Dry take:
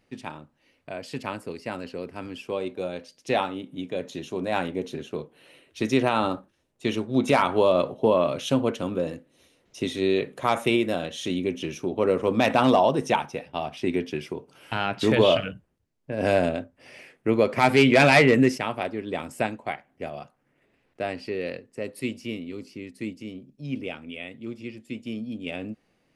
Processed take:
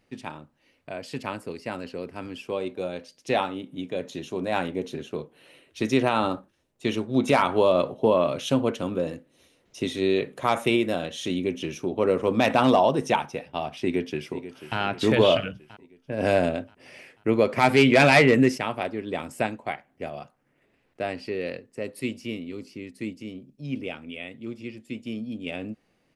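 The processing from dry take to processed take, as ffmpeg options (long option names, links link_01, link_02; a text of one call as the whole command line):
ffmpeg -i in.wav -filter_complex "[0:a]asplit=2[link_01][link_02];[link_02]afade=type=in:start_time=13.82:duration=0.01,afade=type=out:start_time=14.78:duration=0.01,aecho=0:1:490|980|1470|1960|2450|2940:0.211349|0.116242|0.063933|0.0351632|0.0193397|0.0106369[link_03];[link_01][link_03]amix=inputs=2:normalize=0" out.wav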